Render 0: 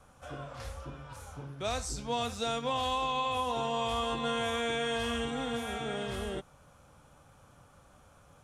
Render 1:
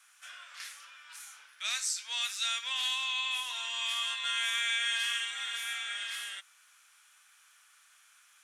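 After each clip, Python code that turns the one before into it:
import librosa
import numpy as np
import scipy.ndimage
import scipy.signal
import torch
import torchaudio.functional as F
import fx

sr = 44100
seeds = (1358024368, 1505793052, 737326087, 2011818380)

y = scipy.signal.sosfilt(scipy.signal.cheby1(3, 1.0, 1800.0, 'highpass', fs=sr, output='sos'), x)
y = F.gain(torch.from_numpy(y), 7.5).numpy()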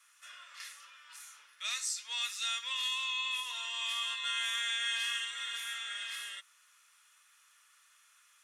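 y = fx.notch_comb(x, sr, f0_hz=780.0)
y = F.gain(torch.from_numpy(y), -1.5).numpy()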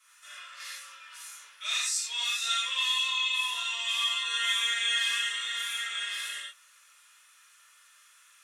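y = fx.rev_gated(x, sr, seeds[0], gate_ms=140, shape='flat', drr_db=-7.5)
y = F.gain(torch.from_numpy(y), -2.0).numpy()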